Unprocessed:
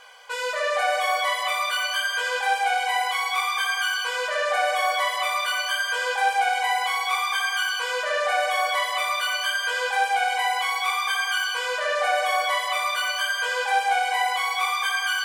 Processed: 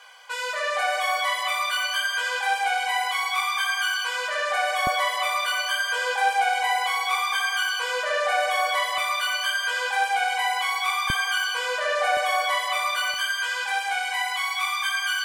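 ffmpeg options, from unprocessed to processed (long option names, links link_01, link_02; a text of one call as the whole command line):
ffmpeg -i in.wav -af "asetnsamples=nb_out_samples=441:pad=0,asendcmd='4.87 highpass f 250;8.98 highpass f 600;11.1 highpass f 160;12.17 highpass f 460;13.14 highpass f 1100',highpass=660" out.wav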